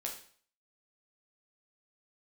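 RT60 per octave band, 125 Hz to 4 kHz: 0.50 s, 0.50 s, 0.50 s, 0.50 s, 0.50 s, 0.50 s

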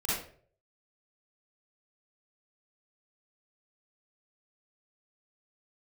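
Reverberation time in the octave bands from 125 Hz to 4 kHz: 0.75 s, 0.50 s, 0.60 s, 0.45 s, 0.40 s, 0.35 s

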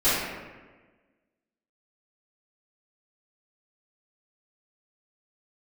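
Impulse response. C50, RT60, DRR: -2.0 dB, 1.3 s, -16.5 dB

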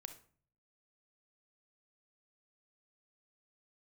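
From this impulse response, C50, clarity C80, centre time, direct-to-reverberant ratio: 10.0 dB, 16.0 dB, 10 ms, 7.5 dB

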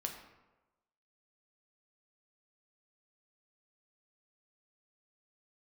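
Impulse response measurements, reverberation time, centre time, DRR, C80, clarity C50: 1.1 s, 27 ms, 2.5 dB, 8.5 dB, 6.5 dB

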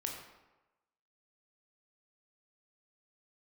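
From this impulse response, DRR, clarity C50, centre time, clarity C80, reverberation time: 0.0 dB, 4.0 dB, 43 ms, 6.0 dB, 1.1 s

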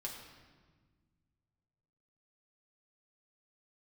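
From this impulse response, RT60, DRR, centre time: 1.5 s, -2.0 dB, 49 ms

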